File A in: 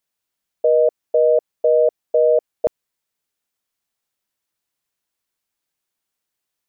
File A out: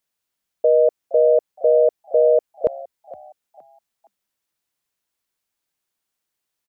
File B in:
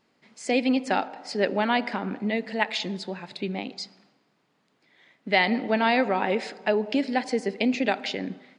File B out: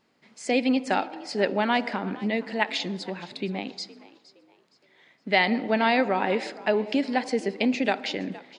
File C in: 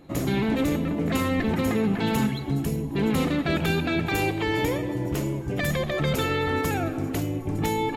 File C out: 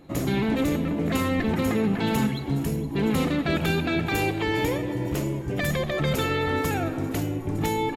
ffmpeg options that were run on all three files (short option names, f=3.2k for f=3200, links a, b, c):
-filter_complex "[0:a]asplit=4[a][b][c][d];[b]adelay=466,afreqshift=64,volume=-19.5dB[e];[c]adelay=932,afreqshift=128,volume=-28.6dB[f];[d]adelay=1398,afreqshift=192,volume=-37.7dB[g];[a][e][f][g]amix=inputs=4:normalize=0"